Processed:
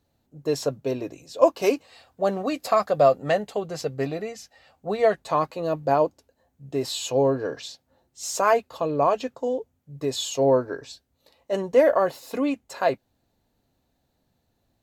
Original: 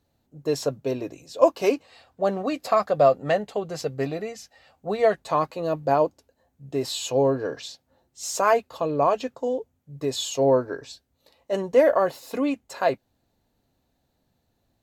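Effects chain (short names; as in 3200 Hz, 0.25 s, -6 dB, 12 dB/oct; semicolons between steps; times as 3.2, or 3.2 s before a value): 1.62–3.66 high shelf 6300 Hz +6 dB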